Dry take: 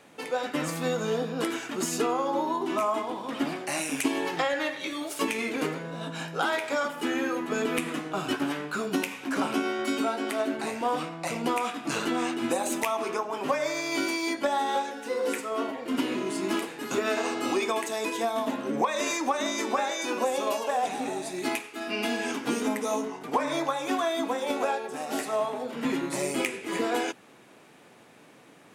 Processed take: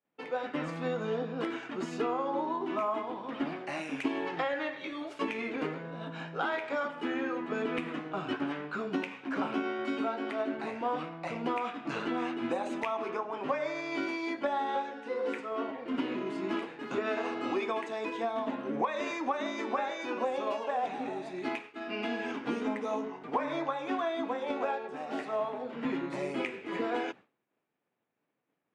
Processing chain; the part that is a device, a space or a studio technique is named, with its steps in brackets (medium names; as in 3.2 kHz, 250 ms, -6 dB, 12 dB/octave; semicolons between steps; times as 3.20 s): hearing-loss simulation (low-pass 2.8 kHz 12 dB/octave; expander -39 dBFS); trim -4.5 dB